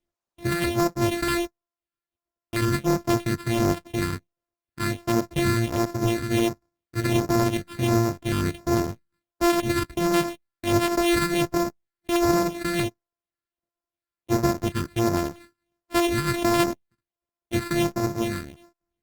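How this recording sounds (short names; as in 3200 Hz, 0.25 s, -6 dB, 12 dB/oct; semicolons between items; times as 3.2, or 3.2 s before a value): a buzz of ramps at a fixed pitch in blocks of 128 samples; phasing stages 6, 1.4 Hz, lowest notch 700–4300 Hz; aliases and images of a low sample rate 6200 Hz, jitter 0%; Opus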